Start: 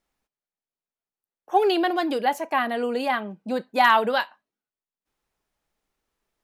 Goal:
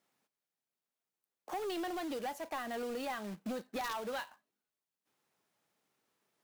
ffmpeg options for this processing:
-af "highpass=f=120:w=0.5412,highpass=f=120:w=1.3066,acrusher=bits=2:mode=log:mix=0:aa=0.000001,aeval=exprs='(mod(2.11*val(0)+1,2)-1)/2.11':c=same,acompressor=threshold=0.0251:ratio=10,asoftclip=type=tanh:threshold=0.0224"

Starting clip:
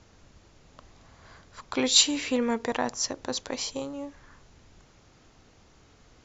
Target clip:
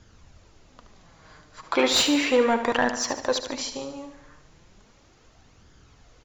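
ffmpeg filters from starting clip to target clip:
-filter_complex "[0:a]flanger=delay=0.6:depth=6:regen=43:speed=0.35:shape=sinusoidal,asettb=1/sr,asplit=3[s0][s1][s2];[s0]atrim=end=1.634[s3];[s1]atrim=start=1.63:end=3.39,asetpts=PTS-STARTPTS,afade=t=in:d=0.004:c=qsin,afade=t=out:st=1.756:d=0.004:c=qsin,asplit=2[s4][s5];[s5]highpass=f=720:p=1,volume=7.94,asoftclip=type=tanh:threshold=0.335[s6];[s4][s6]amix=inputs=2:normalize=0,lowpass=f=1600:p=1,volume=0.501[s7];[s2]atrim=start=3.386[s8];[s3][s7]acrossfade=d=0.004:c1=hsin:c2=qsin[s9];[s9][s8]acrossfade=d=0.004:c1=qsin:c2=hsin,asplit=2[s10][s11];[s11]aecho=0:1:73|146|219|292|365|438:0.316|0.174|0.0957|0.0526|0.0289|0.0159[s12];[s10][s12]amix=inputs=2:normalize=0,volume=1.68"

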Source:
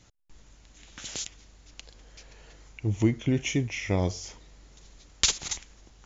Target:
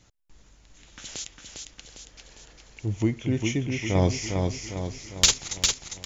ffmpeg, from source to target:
-filter_complex "[0:a]asettb=1/sr,asplit=3[s0][s1][s2];[s0]atrim=end=3.954[s3];[s1]atrim=start=3.95:end=5.34,asetpts=PTS-STARTPTS,afade=t=in:d=0.004:c=qsin,afade=t=out:st=1.386:d=0.004:c=qsin,acontrast=60[s4];[s2]atrim=start=5.336[s5];[s3][s4]acrossfade=d=0.004:c1=hsin:c2=qsin[s6];[s6][s5]acrossfade=d=0.004:c1=qsin:c2=hsin,aecho=1:1:403|806|1209|1612|2015|2418|2821:0.596|0.31|0.161|0.0838|0.0436|0.0226|0.0118,volume=0.891"

